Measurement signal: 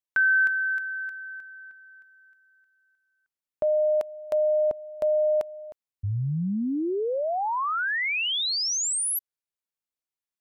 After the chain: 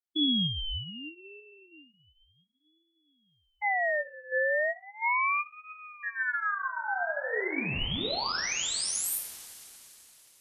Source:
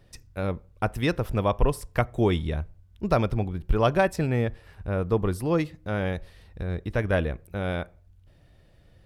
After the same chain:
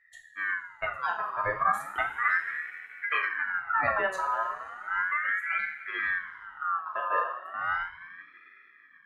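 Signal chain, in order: spectral contrast enhancement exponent 1.9; two-slope reverb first 0.48 s, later 4.1 s, from -18 dB, DRR -1 dB; ring modulator with a swept carrier 1.5 kHz, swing 25%, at 0.35 Hz; trim -5 dB

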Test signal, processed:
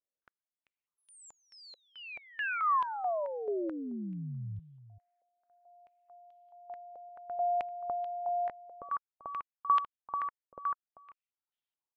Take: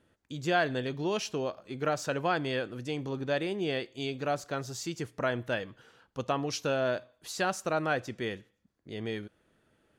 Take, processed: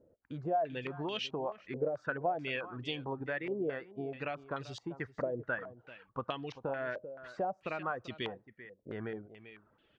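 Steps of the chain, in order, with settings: reverb removal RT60 0.63 s; compression 6:1, threshold -35 dBFS; on a send: delay 390 ms -15 dB; on the sum: step-sequenced low-pass 4.6 Hz 530–3200 Hz; trim -1.5 dB

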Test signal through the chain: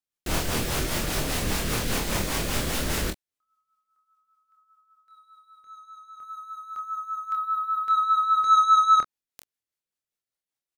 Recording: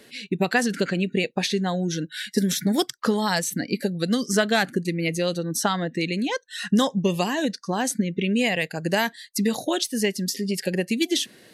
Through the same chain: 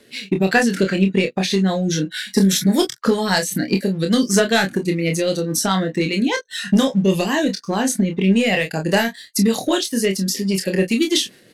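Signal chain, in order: waveshaping leveller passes 1; rotary cabinet horn 5 Hz; early reflections 26 ms -5 dB, 42 ms -13.5 dB; trim +3 dB

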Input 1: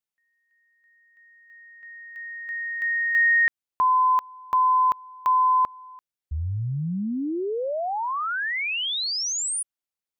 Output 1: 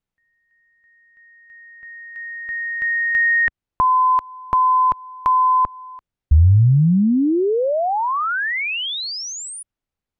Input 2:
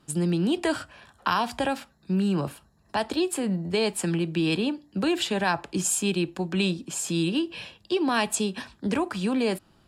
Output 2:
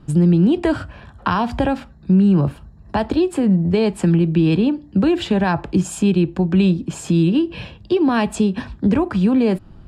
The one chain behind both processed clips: RIAA curve playback; in parallel at +2.5 dB: compression, threshold -25 dBFS

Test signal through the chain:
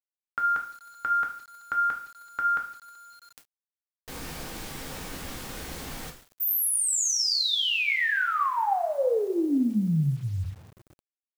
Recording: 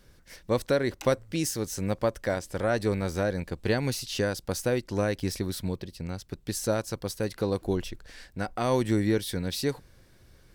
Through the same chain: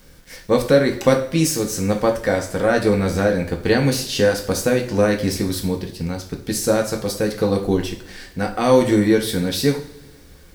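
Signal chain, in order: two-slope reverb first 0.44 s, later 2 s, from -21 dB, DRR 1.5 dB; word length cut 10-bit, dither none; trim +7 dB

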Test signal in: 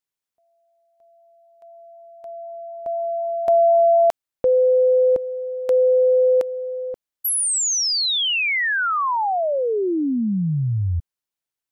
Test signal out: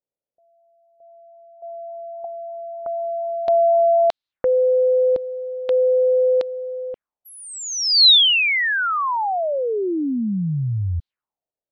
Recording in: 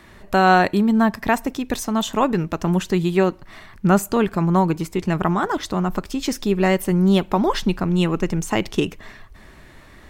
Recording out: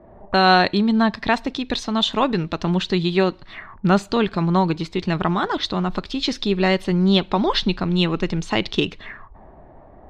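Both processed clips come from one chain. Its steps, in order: touch-sensitive low-pass 560–4000 Hz up, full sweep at -24 dBFS; trim -1 dB

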